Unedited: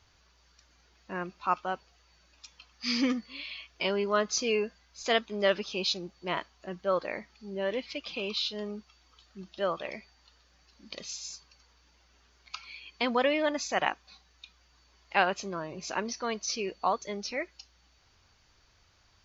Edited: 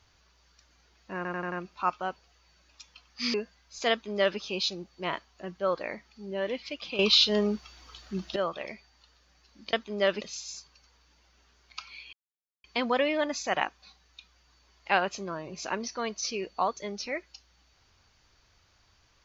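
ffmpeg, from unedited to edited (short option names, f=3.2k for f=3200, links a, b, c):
-filter_complex "[0:a]asplit=11[a][b][c][d][e][f][g][h][i][j][k];[a]atrim=end=1.252[l];[b]atrim=start=1.158:end=1.252[m];[c]atrim=start=1.158:end=1.252[n];[d]atrim=start=1.158:end=1.252[o];[e]atrim=start=1.158:end=2.982[p];[f]atrim=start=4.578:end=8.232[q];[g]atrim=start=8.228:end=9.602,asetpts=PTS-STARTPTS,volume=11dB[r];[h]atrim=start=9.598:end=10.972[s];[i]atrim=start=5.148:end=5.632[t];[j]atrim=start=10.968:end=12.89,asetpts=PTS-STARTPTS,afade=t=out:st=1.918:d=0.004:c=hsin,apad=pad_dur=0.51[u];[k]atrim=start=12.89,asetpts=PTS-STARTPTS,afade=t=in:d=0.004:c=hsin[v];[l][m]acrossfade=d=0.004:c1=hsin:c2=hsin[w];[w][n]acrossfade=d=0.004:c1=hsin:c2=hsin[x];[x][o]acrossfade=d=0.004:c1=hsin:c2=hsin[y];[y][p]acrossfade=d=0.004:c1=hsin:c2=hsin[z];[z][q]acrossfade=d=0.004:c1=hsin:c2=hsin[aa];[aa][r]acrossfade=d=0.004:c1=hsin:c2=hsin[ab];[ab][s]acrossfade=d=0.004:c1=hsin:c2=hsin[ac];[ac][t]acrossfade=d=0.004:c1=hsin:c2=hsin[ad];[u][v]concat=n=2:v=0:a=1[ae];[ad][ae]acrossfade=d=0.004:c1=hsin:c2=hsin"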